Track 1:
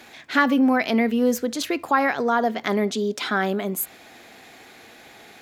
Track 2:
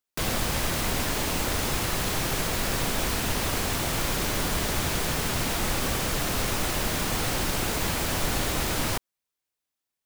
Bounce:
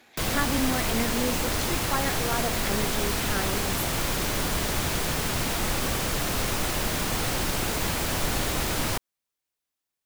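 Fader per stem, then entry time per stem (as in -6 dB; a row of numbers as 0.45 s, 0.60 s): -10.0 dB, 0.0 dB; 0.00 s, 0.00 s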